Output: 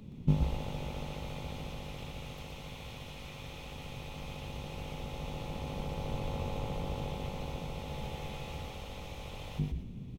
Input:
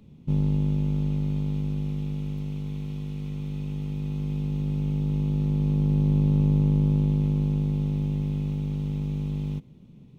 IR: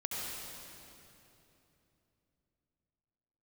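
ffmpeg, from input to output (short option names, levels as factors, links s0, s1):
-filter_complex "[0:a]bandreject=f=50:t=h:w=6,bandreject=f=100:t=h:w=6,bandreject=f=150:t=h:w=6,bandreject=f=200:t=h:w=6,bandreject=f=250:t=h:w=6,bandreject=f=300:t=h:w=6,bandreject=f=350:t=h:w=6,bandreject=f=400:t=h:w=6,bandreject=f=450:t=h:w=6,asettb=1/sr,asplit=3[s0][s1][s2];[s0]atrim=end=7.894[s3];[s1]atrim=start=7.89:end=8.71,asetpts=PTS-STARTPTS,afade=t=in:d=0.004:c=qsin,afade=t=out:st=0.816:d=0.004:c=qsin,asplit=2[s4][s5];[s5]adelay=14,volume=0.562[s6];[s4][s6]amix=inputs=2:normalize=0,atrim=end_sample=36162[s7];[s2]atrim=start=8.706[s8];[s3][s7]acrossfade=d=0.004:c1=hsin:c2=qsin[s9];[s9][s8]acrossfade=d=0.004:c1=qsin:c2=hsin,asplit=5[s10][s11][s12][s13][s14];[s11]adelay=121,afreqshift=-86,volume=0.631[s15];[s12]adelay=242,afreqshift=-172,volume=0.195[s16];[s13]adelay=363,afreqshift=-258,volume=0.061[s17];[s14]adelay=484,afreqshift=-344,volume=0.0188[s18];[s10][s15][s16][s17][s18]amix=inputs=5:normalize=0,volume=1.58"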